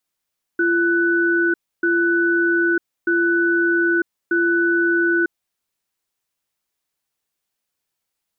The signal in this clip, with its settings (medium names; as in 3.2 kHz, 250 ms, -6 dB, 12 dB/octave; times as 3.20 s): cadence 341 Hz, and 1.49 kHz, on 0.95 s, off 0.29 s, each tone -17.5 dBFS 4.69 s